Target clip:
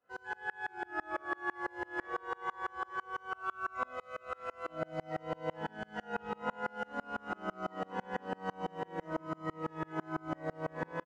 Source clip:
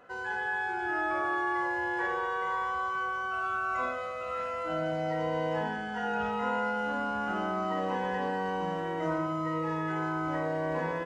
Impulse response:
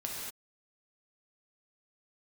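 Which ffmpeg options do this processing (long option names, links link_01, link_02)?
-filter_complex "[0:a]acrossover=split=110[link_01][link_02];[link_02]aecho=1:1:890:0.299[link_03];[link_01][link_03]amix=inputs=2:normalize=0,aeval=exprs='val(0)*pow(10,-32*if(lt(mod(-6*n/s,1),2*abs(-6)/1000),1-mod(-6*n/s,1)/(2*abs(-6)/1000),(mod(-6*n/s,1)-2*abs(-6)/1000)/(1-2*abs(-6)/1000))/20)':channel_layout=same"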